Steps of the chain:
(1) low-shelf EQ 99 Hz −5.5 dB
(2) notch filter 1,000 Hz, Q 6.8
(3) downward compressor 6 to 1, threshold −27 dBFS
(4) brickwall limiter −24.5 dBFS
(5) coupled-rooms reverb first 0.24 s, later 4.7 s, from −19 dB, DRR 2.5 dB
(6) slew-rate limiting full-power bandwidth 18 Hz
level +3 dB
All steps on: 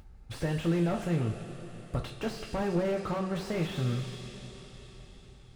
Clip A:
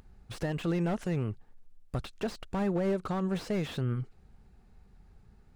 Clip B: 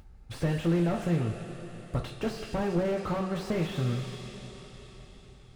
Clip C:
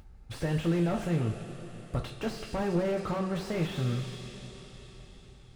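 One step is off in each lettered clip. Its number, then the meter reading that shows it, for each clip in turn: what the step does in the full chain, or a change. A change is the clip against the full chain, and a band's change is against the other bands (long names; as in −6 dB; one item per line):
5, change in momentary loudness spread −9 LU
4, change in integrated loudness +1.5 LU
3, average gain reduction 2.0 dB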